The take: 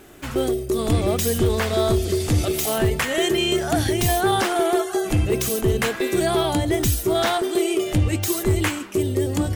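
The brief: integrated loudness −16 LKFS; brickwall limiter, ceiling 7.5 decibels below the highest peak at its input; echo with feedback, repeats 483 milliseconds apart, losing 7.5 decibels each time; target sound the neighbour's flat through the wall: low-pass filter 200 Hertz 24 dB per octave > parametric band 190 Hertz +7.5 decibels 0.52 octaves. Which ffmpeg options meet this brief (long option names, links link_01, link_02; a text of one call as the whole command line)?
ffmpeg -i in.wav -af "alimiter=limit=-19.5dB:level=0:latency=1,lowpass=frequency=200:width=0.5412,lowpass=frequency=200:width=1.3066,equalizer=frequency=190:width_type=o:width=0.52:gain=7.5,aecho=1:1:483|966|1449|1932|2415:0.422|0.177|0.0744|0.0312|0.0131,volume=17dB" out.wav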